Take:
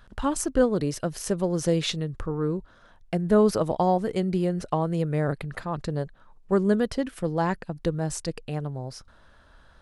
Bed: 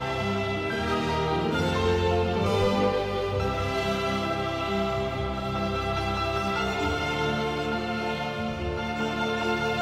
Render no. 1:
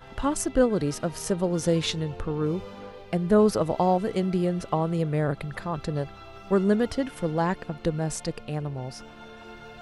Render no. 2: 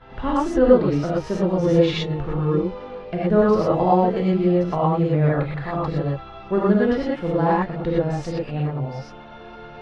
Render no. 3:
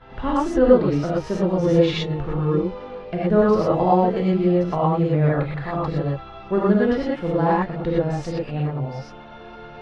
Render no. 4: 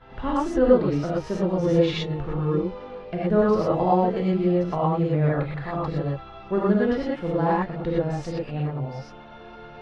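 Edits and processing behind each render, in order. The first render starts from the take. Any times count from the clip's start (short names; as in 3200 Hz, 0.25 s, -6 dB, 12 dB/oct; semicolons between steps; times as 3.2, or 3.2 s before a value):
add bed -18 dB
air absorption 230 m; non-linear reverb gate 0.14 s rising, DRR -6 dB
nothing audible
gain -3 dB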